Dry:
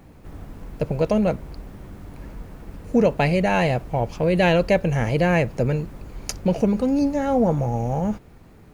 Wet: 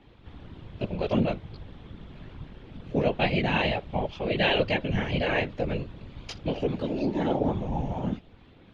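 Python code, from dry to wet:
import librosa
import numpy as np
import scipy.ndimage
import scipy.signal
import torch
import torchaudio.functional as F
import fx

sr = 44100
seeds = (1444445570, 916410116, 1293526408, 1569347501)

y = fx.chorus_voices(x, sr, voices=4, hz=0.43, base_ms=18, depth_ms=3.5, mix_pct=50)
y = fx.whisperise(y, sr, seeds[0])
y = fx.lowpass_res(y, sr, hz=3400.0, q=4.5)
y = F.gain(torch.from_numpy(y), -4.0).numpy()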